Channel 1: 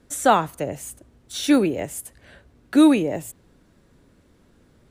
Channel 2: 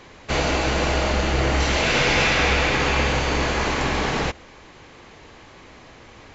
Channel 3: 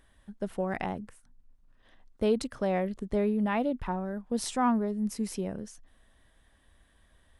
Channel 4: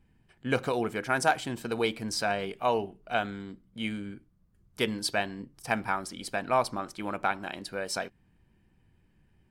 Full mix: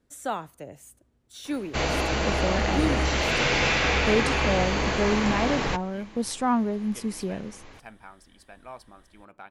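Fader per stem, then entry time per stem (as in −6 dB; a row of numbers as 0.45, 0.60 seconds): −13.5, −4.0, +2.5, −17.0 decibels; 0.00, 1.45, 1.85, 2.15 seconds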